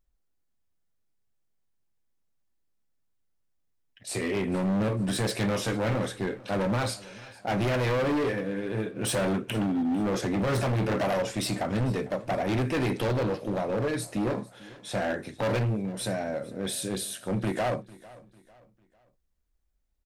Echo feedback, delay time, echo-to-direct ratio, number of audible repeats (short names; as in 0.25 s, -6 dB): 38%, 0.449 s, -20.5 dB, 2